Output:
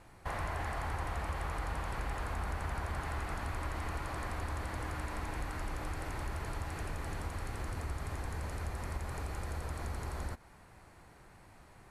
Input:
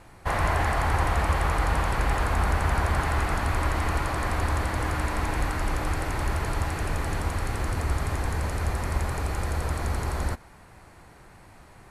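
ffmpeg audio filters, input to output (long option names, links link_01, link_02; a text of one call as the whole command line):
ffmpeg -i in.wav -af "acompressor=threshold=-31dB:ratio=2,volume=-7dB" out.wav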